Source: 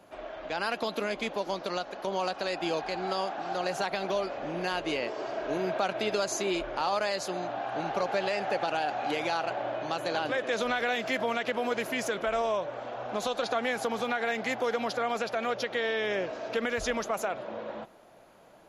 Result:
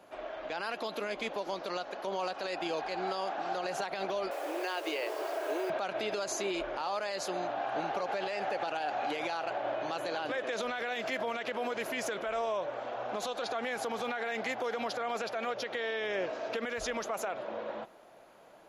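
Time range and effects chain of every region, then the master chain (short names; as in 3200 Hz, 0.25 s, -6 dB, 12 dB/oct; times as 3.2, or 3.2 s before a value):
4.31–5.7 steep high-pass 300 Hz 72 dB/oct + requantised 8-bit, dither none
whole clip: tone controls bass -7 dB, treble -2 dB; limiter -25 dBFS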